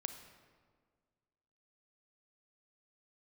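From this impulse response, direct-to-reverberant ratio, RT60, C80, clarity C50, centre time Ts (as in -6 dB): 7.5 dB, 1.7 s, 10.0 dB, 8.5 dB, 21 ms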